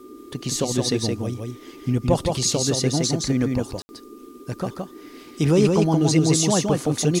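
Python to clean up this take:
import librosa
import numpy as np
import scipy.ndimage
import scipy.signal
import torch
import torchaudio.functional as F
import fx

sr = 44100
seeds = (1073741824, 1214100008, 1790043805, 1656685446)

y = fx.notch(x, sr, hz=1200.0, q=30.0)
y = fx.fix_ambience(y, sr, seeds[0], print_start_s=4.87, print_end_s=5.37, start_s=3.82, end_s=3.89)
y = fx.noise_reduce(y, sr, print_start_s=3.98, print_end_s=4.48, reduce_db=24.0)
y = fx.fix_echo_inverse(y, sr, delay_ms=168, level_db=-3.5)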